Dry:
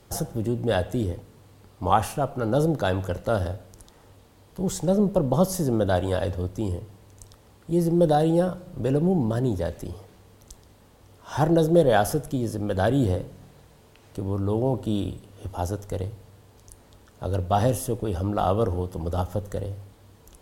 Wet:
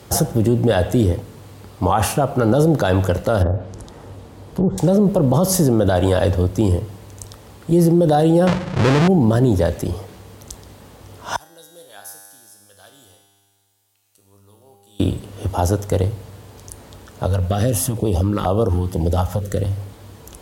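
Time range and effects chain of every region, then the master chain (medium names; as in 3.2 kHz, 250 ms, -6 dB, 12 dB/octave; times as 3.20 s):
3.42–4.78 s: low-pass that closes with the level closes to 850 Hz, closed at -24 dBFS + tilt shelf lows +4 dB, about 1.2 kHz + compression 3:1, threshold -26 dBFS
8.47–9.08 s: square wave that keeps the level + distance through air 91 m
11.36–15.00 s: pre-emphasis filter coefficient 0.97 + feedback comb 100 Hz, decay 2 s, mix 90% + hard clipper -37 dBFS
17.26–19.77 s: compression 4:1, threshold -24 dBFS + step-sequenced notch 4.2 Hz 340–1900 Hz
whole clip: high-pass 49 Hz 24 dB/octave; loudness maximiser +17.5 dB; trim -5.5 dB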